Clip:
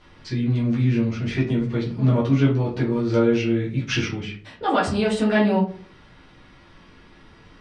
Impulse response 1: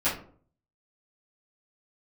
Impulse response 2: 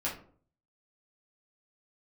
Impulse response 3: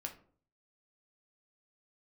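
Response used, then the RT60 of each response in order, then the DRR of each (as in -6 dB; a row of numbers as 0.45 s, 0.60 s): 2; 0.50 s, 0.50 s, 0.50 s; -14.5 dB, -7.0 dB, 2.5 dB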